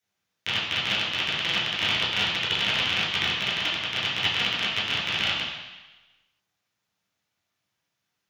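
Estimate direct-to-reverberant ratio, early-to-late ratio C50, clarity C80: -8.0 dB, 1.5 dB, 4.0 dB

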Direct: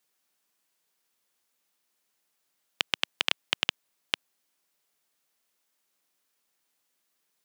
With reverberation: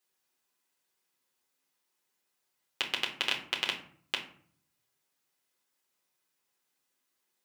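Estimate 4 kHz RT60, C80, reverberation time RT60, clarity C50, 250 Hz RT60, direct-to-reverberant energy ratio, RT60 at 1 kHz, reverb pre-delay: 0.30 s, 14.0 dB, 0.55 s, 9.5 dB, 0.80 s, -1.5 dB, 0.55 s, 5 ms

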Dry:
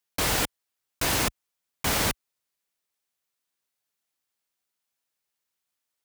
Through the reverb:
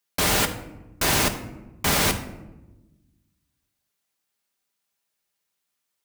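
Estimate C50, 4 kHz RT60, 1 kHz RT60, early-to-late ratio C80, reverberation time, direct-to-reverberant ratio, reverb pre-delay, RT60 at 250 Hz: 11.0 dB, 0.55 s, 0.90 s, 13.5 dB, 1.0 s, 5.0 dB, 5 ms, 1.7 s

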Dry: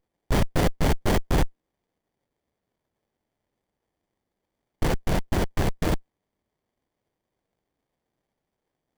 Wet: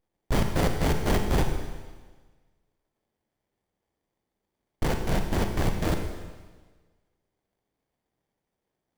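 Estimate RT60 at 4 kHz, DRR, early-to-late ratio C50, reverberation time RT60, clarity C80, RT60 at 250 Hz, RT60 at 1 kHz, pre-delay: 1.4 s, 4.5 dB, 5.5 dB, 1.4 s, 7.0 dB, 1.4 s, 1.4 s, 35 ms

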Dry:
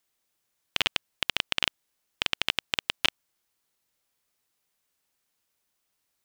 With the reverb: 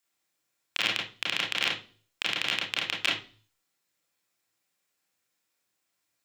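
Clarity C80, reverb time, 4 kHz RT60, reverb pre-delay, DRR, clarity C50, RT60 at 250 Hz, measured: 13.5 dB, 0.40 s, 0.40 s, 27 ms, -3.5 dB, 6.0 dB, 0.50 s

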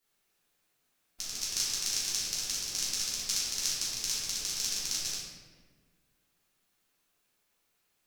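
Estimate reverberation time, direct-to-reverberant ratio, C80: 1.5 s, -10.5 dB, 1.5 dB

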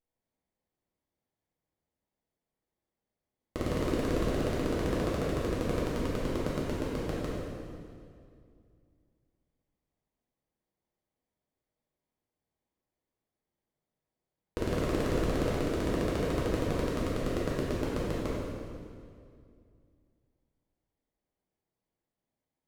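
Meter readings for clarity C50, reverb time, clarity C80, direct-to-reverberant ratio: -2.0 dB, 2.3 s, 0.0 dB, -7.5 dB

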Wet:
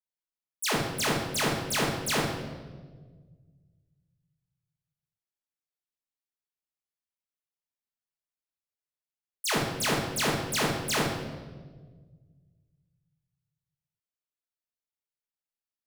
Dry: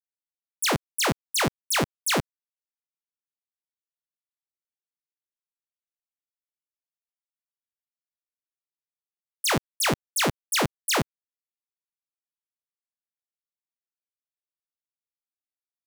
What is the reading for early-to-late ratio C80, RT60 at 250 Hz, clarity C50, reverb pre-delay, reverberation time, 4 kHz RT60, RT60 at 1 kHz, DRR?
5.5 dB, 2.1 s, 2.0 dB, 5 ms, 1.5 s, 1.1 s, 1.3 s, -3.5 dB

